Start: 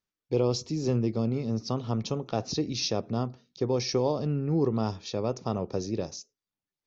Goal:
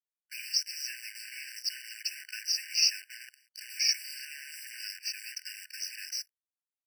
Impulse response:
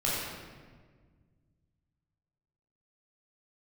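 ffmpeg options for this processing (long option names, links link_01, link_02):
-filter_complex "[0:a]asettb=1/sr,asplit=3[link_01][link_02][link_03];[link_01]atrim=end=3.134[link_04];[link_02]atrim=start=3.13:end=3.66,asetpts=PTS-STARTPTS,afade=type=in:duration=0.004:curve=qsin,afade=type=out:start_time=0.526:duration=0.004:curve=qsin,acompressor=threshold=-33dB:ratio=8[link_05];[link_03]atrim=start=3.656[link_06];[link_04][link_05]acrossfade=duration=0.004:curve1=hsin:curve2=qsin[link_07];[link_07][link_06]acrossfade=duration=0.004:curve1=qsin:curve2=hsin,acrusher=bits=8:dc=4:mix=0:aa=0.000001,afftfilt=real='re*eq(mod(floor(b*sr/1024/1500),2),1)':imag='im*eq(mod(floor(b*sr/1024/1500),2),1)':win_size=1024:overlap=0.75,volume=8dB"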